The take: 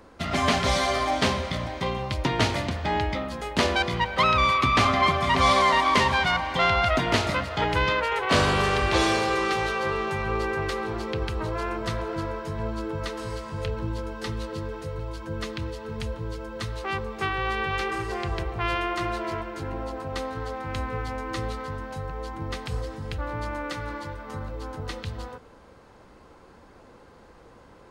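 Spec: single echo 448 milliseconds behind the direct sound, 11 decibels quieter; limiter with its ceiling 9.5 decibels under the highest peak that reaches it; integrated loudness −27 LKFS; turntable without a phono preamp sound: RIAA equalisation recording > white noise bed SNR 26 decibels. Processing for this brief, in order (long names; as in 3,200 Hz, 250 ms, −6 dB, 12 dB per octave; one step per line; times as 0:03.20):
brickwall limiter −17 dBFS
RIAA equalisation recording
single-tap delay 448 ms −11 dB
white noise bed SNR 26 dB
level +0.5 dB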